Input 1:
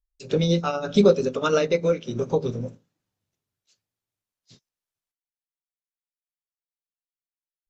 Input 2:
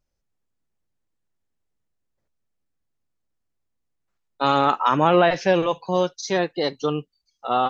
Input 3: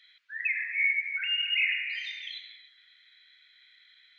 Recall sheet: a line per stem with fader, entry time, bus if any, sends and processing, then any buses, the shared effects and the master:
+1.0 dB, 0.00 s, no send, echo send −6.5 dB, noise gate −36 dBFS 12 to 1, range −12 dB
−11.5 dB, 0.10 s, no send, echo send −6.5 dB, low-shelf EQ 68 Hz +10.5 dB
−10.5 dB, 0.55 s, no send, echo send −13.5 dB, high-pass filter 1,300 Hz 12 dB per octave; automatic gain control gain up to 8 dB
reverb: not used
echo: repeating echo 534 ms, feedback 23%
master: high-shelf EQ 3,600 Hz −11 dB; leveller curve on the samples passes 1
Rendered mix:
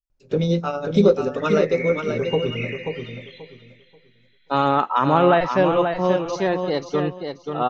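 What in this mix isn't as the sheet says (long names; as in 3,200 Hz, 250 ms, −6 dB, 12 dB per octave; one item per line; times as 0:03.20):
stem 2 −11.5 dB → +0.5 dB
stem 3: entry 0.55 s → 1.00 s
master: missing leveller curve on the samples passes 1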